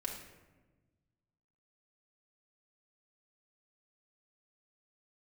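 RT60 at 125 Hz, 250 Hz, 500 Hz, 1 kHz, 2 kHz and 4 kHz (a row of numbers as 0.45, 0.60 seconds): 2.1, 1.8, 1.4, 1.1, 1.0, 0.65 seconds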